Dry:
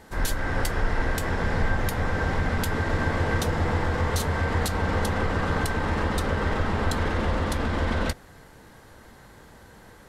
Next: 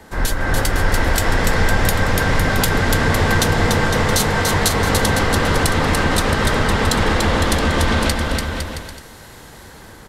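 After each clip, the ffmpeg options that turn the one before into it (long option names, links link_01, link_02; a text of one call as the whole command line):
ffmpeg -i in.wav -filter_complex "[0:a]acrossover=split=100|460|2500[link_01][link_02][link_03][link_04];[link_04]dynaudnorm=framelen=300:gausssize=5:maxgain=7dB[link_05];[link_01][link_02][link_03][link_05]amix=inputs=4:normalize=0,aecho=1:1:290|507.5|670.6|793|884.7:0.631|0.398|0.251|0.158|0.1,volume=6.5dB" out.wav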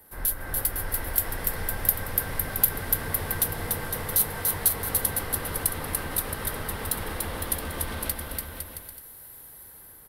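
ffmpeg -i in.wav -af "equalizer=frequency=220:width=2.3:gain=-3.5,aexciter=amount=12.9:drive=7.7:freq=10000,volume=-16.5dB" out.wav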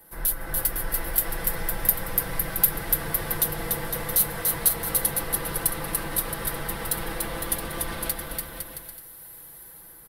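ffmpeg -i in.wav -af "aecho=1:1:6:0.65" out.wav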